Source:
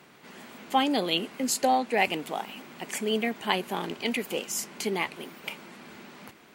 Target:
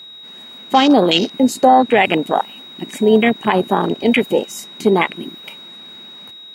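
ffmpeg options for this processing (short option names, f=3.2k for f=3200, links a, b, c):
-af "aeval=exprs='val(0)+0.0178*sin(2*PI*3800*n/s)':c=same,afwtdn=0.0282,alimiter=level_in=17.5dB:limit=-1dB:release=50:level=0:latency=1,volume=-1dB"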